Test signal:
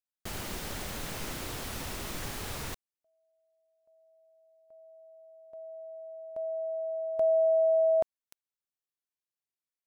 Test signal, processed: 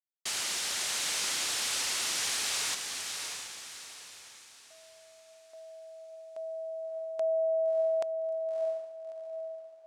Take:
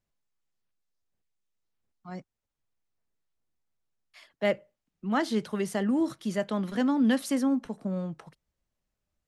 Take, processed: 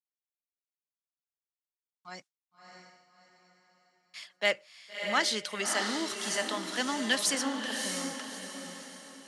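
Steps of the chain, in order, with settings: weighting filter ITU-R 468; gate with hold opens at -57 dBFS, hold 32 ms, range -32 dB; on a send: diffused feedback echo 0.63 s, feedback 41%, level -5 dB

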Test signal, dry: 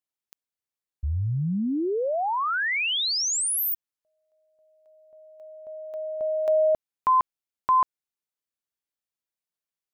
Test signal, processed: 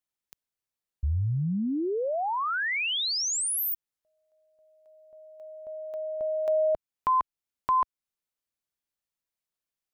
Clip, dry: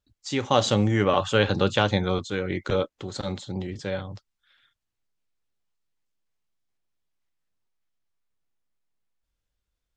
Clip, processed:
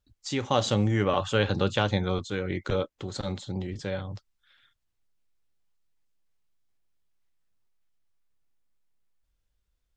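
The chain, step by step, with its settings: low shelf 86 Hz +6.5 dB; in parallel at -1.5 dB: compressor, threshold -35 dBFS; on the sum: gain -5 dB

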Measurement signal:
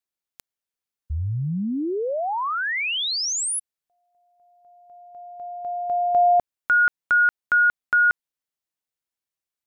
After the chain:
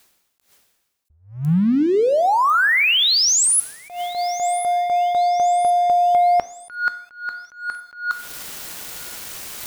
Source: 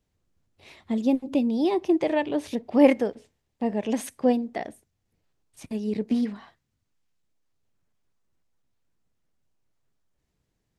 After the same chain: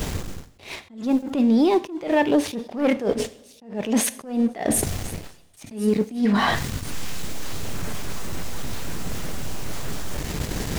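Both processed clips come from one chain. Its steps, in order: dynamic EQ 1400 Hz, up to +4 dB, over -29 dBFS, Q 1; reverse; upward compressor 4:1, threshold -19 dBFS; reverse; sample leveller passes 2; compressor 6:1, threshold -19 dBFS; on a send: thin delay 1.051 s, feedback 45%, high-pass 4400 Hz, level -15 dB; on the sum: two-slope reverb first 0.58 s, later 1.7 s, from -16 dB, DRR 14 dB; attack slew limiter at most 140 dB/s; gain +3.5 dB

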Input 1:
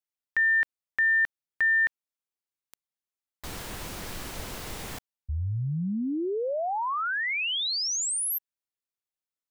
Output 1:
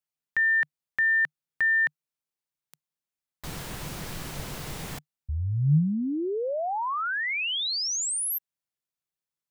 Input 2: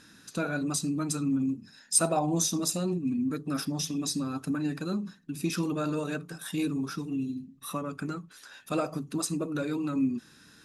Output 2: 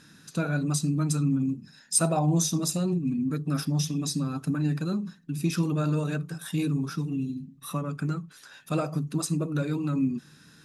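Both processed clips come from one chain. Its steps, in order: bell 150 Hz +11 dB 0.42 oct

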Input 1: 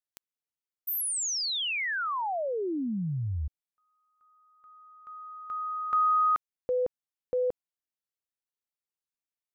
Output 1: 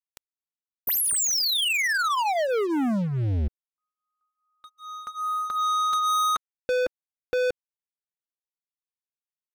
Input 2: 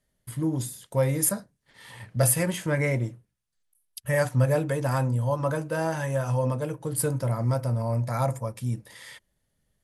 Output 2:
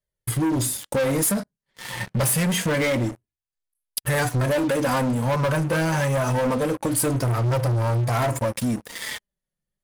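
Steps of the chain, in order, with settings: flange 0.26 Hz, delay 1.8 ms, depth 3.9 ms, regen -5%; sample leveller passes 5; compressor 4:1, threshold -21 dBFS

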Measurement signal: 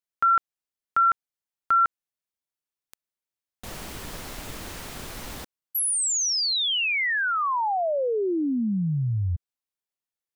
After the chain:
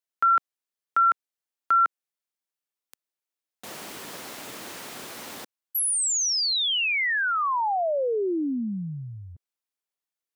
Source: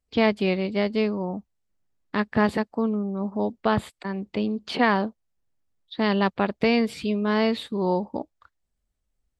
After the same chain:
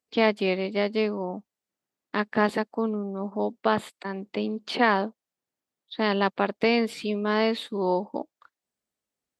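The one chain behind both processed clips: HPF 240 Hz 12 dB/oct

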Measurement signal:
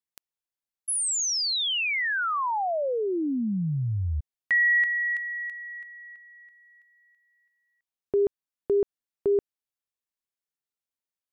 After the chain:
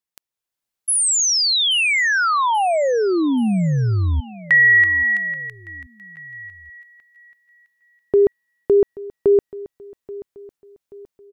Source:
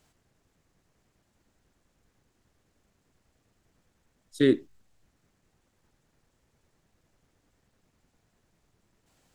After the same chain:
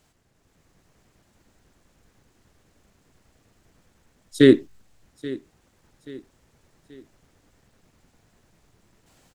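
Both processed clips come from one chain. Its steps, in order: AGC gain up to 6 dB; feedback echo 0.831 s, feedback 42%, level -18.5 dB; gain +3 dB

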